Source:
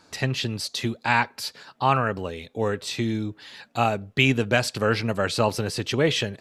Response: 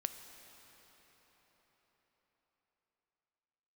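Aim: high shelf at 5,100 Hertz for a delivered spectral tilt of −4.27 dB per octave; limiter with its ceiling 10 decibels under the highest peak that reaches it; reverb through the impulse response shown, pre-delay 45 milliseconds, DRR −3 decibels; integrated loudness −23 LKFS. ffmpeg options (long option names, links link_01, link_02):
-filter_complex "[0:a]highshelf=frequency=5100:gain=-7.5,alimiter=limit=-15.5dB:level=0:latency=1,asplit=2[link_01][link_02];[1:a]atrim=start_sample=2205,adelay=45[link_03];[link_02][link_03]afir=irnorm=-1:irlink=0,volume=3.5dB[link_04];[link_01][link_04]amix=inputs=2:normalize=0,volume=1dB"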